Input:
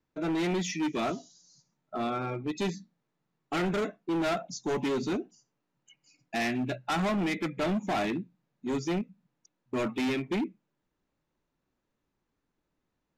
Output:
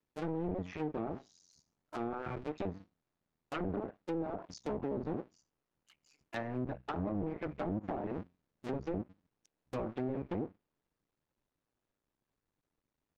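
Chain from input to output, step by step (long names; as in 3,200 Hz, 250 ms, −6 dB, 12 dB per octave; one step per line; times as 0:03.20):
sub-harmonics by changed cycles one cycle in 2, muted
treble cut that deepens with the level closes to 610 Hz, closed at −27.5 dBFS
level −3.5 dB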